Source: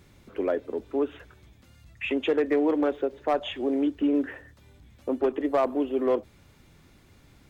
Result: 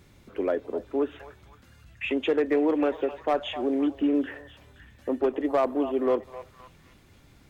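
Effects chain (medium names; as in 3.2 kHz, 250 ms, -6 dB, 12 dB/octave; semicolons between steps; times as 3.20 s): repeats whose band climbs or falls 260 ms, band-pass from 840 Hz, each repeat 0.7 oct, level -9.5 dB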